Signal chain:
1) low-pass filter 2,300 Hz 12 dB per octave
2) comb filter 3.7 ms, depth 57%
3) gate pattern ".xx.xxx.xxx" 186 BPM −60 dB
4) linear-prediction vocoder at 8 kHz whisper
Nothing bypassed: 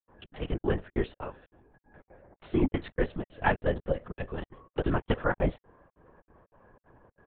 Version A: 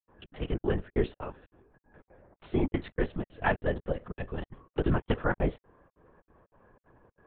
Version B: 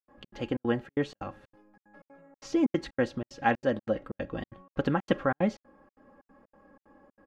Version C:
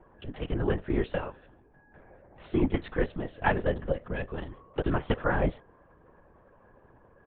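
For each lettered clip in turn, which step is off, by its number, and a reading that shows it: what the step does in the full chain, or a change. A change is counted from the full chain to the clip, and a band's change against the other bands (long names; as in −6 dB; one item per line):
2, change in crest factor −1.5 dB
4, 125 Hz band −5.0 dB
3, change in momentary loudness spread −1 LU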